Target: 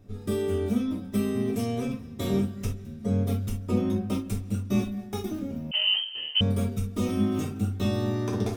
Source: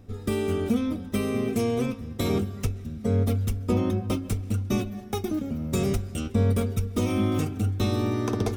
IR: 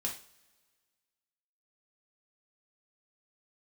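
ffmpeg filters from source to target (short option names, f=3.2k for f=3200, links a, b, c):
-filter_complex "[1:a]atrim=start_sample=2205,atrim=end_sample=3528[a];[0:a][a]afir=irnorm=-1:irlink=0,asettb=1/sr,asplit=3[b][c][d];[b]atrim=end=5.714[e];[c]atrim=start=5.71:end=6.41,asetpts=PTS-STARTPTS,afade=t=in:d=0.004:c=qsin,afade=t=out:st=0.696:d=0.004:c=qsin,lowpass=f=2.7k:t=q:w=0.5098,lowpass=f=2.7k:t=q:w=0.6013,lowpass=f=2.7k:t=q:w=0.9,lowpass=f=2.7k:t=q:w=2.563,afreqshift=-3200[f];[d]atrim=start=6.406[g];[e][f]acrossfade=d=0.004:c1=hsin:c2=qsin[h];[h][g]acrossfade=d=0.004:c1=qsin:c2=hsin,volume=-5dB"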